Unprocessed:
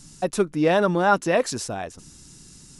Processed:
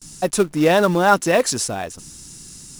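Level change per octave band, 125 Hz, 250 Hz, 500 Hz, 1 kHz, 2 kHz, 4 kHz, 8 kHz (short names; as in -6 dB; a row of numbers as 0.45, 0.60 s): +4.0, +4.0, +4.0, +4.0, +4.5, +7.0, +9.5 dB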